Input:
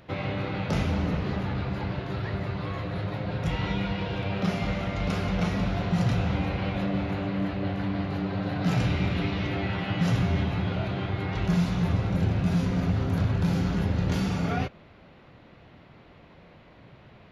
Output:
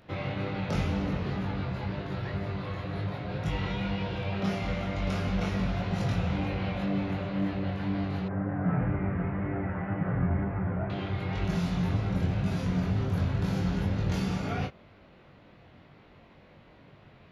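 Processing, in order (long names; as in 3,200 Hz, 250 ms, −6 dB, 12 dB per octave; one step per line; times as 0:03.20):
chorus effect 2 Hz, delay 20 ms, depth 2.2 ms
0:08.28–0:10.90: Butterworth low-pass 1,900 Hz 36 dB per octave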